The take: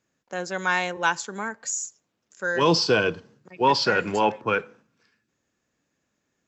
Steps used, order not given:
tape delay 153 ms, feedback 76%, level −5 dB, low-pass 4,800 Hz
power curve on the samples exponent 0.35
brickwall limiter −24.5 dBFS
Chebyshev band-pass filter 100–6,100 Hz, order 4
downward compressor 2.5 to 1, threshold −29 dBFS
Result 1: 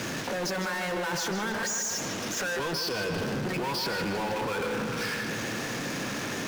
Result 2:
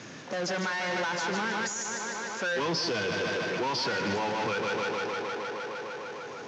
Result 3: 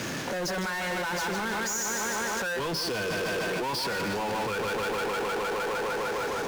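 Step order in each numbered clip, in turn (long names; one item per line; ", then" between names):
Chebyshev band-pass filter, then power curve on the samples, then brickwall limiter, then tape delay, then downward compressor
tape delay, then downward compressor, then brickwall limiter, then power curve on the samples, then Chebyshev band-pass filter
Chebyshev band-pass filter, then tape delay, then power curve on the samples, then brickwall limiter, then downward compressor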